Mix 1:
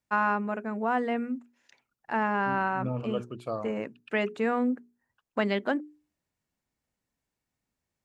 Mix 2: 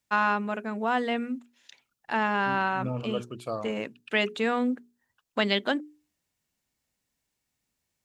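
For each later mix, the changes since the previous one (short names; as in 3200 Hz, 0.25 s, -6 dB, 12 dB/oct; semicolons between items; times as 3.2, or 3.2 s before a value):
first voice: add bell 3500 Hz +10.5 dB 0.6 oct; master: add high shelf 3300 Hz +9.5 dB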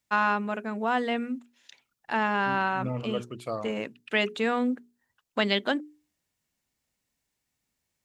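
second voice: remove Butterworth band-stop 2000 Hz, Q 4.2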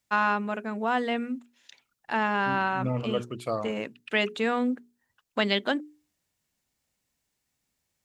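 second voice +3.0 dB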